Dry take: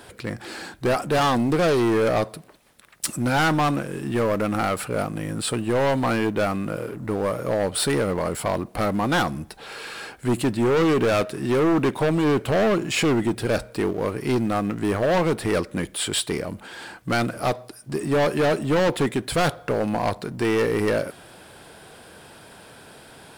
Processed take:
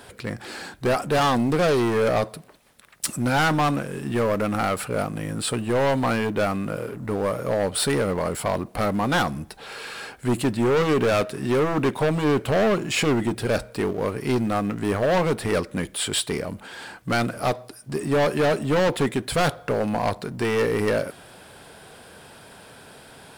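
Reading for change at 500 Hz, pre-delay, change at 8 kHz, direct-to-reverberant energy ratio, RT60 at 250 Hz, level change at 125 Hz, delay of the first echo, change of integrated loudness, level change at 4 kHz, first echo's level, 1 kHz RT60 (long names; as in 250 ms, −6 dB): 0.0 dB, no reverb audible, 0.0 dB, no reverb audible, no reverb audible, 0.0 dB, no echo audible, −0.5 dB, 0.0 dB, no echo audible, no reverb audible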